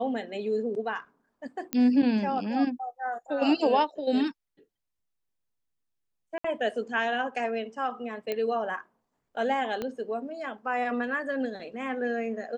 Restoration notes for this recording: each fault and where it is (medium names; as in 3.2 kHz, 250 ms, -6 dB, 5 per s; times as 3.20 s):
1.73 s: pop -12 dBFS
6.38–6.44 s: dropout 64 ms
8.32 s: pop -18 dBFS
9.82 s: pop -19 dBFS